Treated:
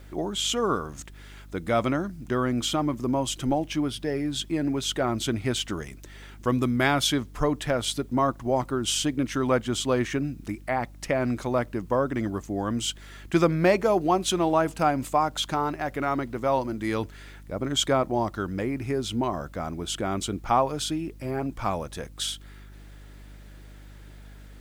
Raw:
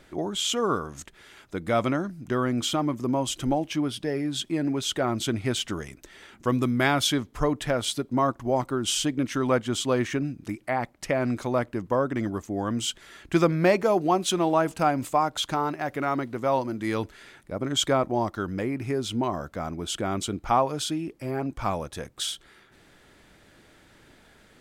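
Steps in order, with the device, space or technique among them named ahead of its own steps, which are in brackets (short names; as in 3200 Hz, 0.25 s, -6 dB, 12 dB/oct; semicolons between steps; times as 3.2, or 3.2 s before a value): video cassette with head-switching buzz (buzz 50 Hz, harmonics 6, -46 dBFS -8 dB/oct; white noise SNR 40 dB)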